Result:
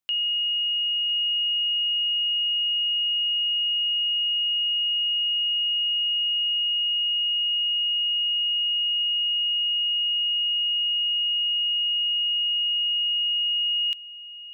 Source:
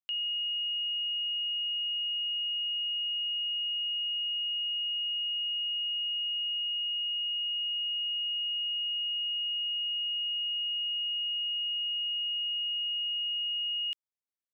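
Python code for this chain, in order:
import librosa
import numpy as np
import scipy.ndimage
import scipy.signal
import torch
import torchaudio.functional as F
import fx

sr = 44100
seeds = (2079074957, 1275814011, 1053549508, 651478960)

y = x + 10.0 ** (-15.5 / 20.0) * np.pad(x, (int(1006 * sr / 1000.0), 0))[:len(x)]
y = fx.env_flatten(y, sr, amount_pct=100, at=(7.53, 9.02))
y = y * librosa.db_to_amplitude(7.5)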